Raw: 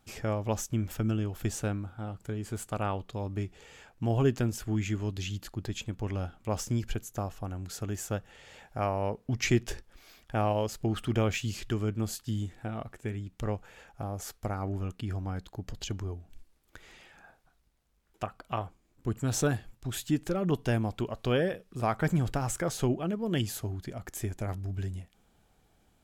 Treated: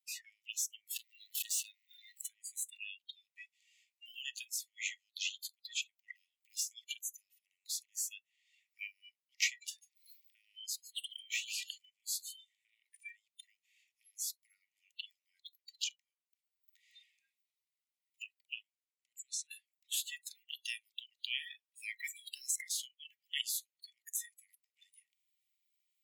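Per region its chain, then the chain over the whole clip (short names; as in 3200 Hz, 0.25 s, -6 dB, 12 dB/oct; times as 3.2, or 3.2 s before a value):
0.96–2.29 compressor 12:1, threshold -40 dBFS + sample leveller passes 5
9.47–12.85 compressor 3:1, threshold -34 dBFS + echo 0.146 s -9.5 dB
18.62–19.51 LPF 9500 Hz + compressor 16:1, threshold -36 dBFS
whole clip: spectral noise reduction 29 dB; Chebyshev high-pass 1900 Hz, order 10; three-band squash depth 40%; gain +4.5 dB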